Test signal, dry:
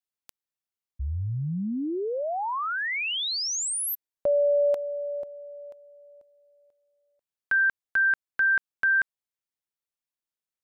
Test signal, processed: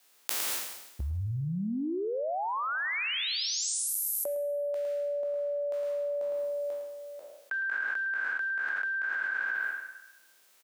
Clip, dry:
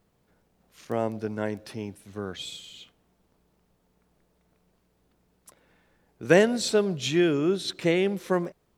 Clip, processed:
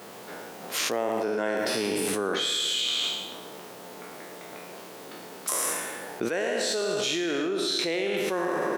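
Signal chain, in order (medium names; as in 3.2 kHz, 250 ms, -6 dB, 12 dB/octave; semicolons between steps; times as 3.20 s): spectral sustain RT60 1.03 s; high-pass 340 Hz 12 dB/octave; on a send: delay 109 ms -9 dB; on the sum: level flattener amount 100%; trim -13 dB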